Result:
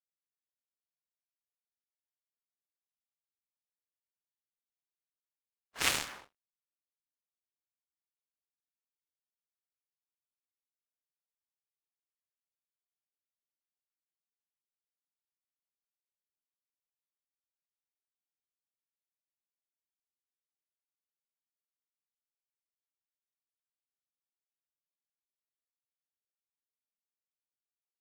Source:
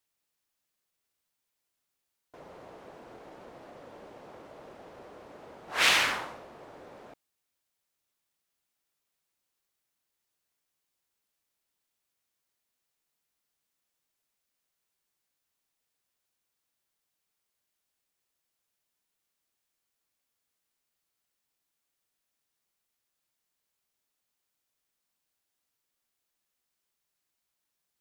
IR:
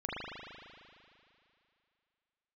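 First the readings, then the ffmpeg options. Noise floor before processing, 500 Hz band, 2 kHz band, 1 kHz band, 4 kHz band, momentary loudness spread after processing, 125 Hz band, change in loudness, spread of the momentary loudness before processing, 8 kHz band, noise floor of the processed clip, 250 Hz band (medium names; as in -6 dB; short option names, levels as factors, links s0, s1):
-83 dBFS, -11.0 dB, -10.5 dB, -10.5 dB, -8.5 dB, 9 LU, -3.5 dB, -7.0 dB, 16 LU, -2.0 dB, under -85 dBFS, -7.0 dB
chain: -af "aeval=exprs='sgn(val(0))*max(abs(val(0))-0.0119,0)':c=same,aeval=exprs='0.335*(cos(1*acos(clip(val(0)/0.335,-1,1)))-cos(1*PI/2))+0.0668*(cos(3*acos(clip(val(0)/0.335,-1,1)))-cos(3*PI/2))+0.00335*(cos(5*acos(clip(val(0)/0.335,-1,1)))-cos(5*PI/2))+0.0376*(cos(7*acos(clip(val(0)/0.335,-1,1)))-cos(7*PI/2))':c=same,agate=range=0.0224:threshold=0.00316:ratio=3:detection=peak"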